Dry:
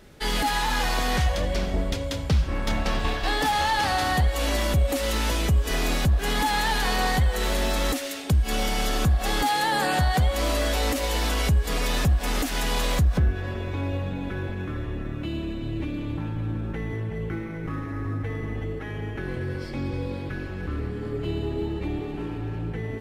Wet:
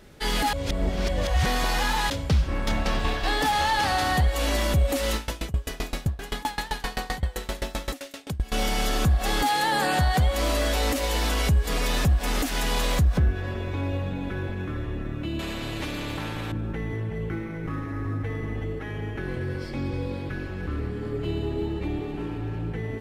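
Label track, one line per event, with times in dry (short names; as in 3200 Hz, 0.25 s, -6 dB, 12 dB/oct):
0.530000	2.100000	reverse
5.150000	8.520000	dB-ramp tremolo decaying 7.7 Hz, depth 24 dB
15.390000	16.520000	spectral compressor 2:1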